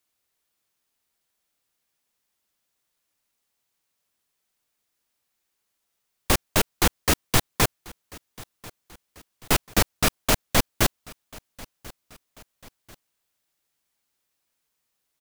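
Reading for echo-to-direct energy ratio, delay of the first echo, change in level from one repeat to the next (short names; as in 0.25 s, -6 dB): -21.5 dB, 1.04 s, -6.0 dB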